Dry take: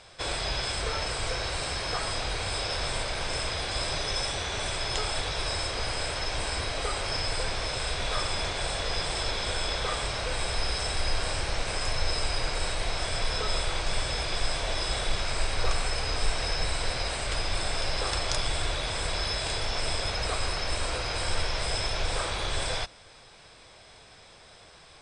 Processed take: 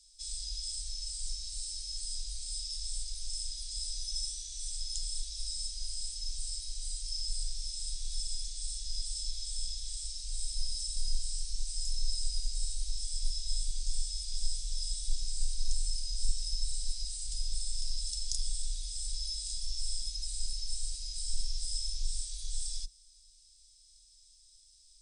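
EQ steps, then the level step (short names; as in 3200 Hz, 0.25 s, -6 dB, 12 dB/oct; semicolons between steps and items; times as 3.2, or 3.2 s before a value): inverse Chebyshev band-stop 150–1400 Hz, stop band 70 dB; band shelf 1200 Hz +15 dB 1.3 oct; 0.0 dB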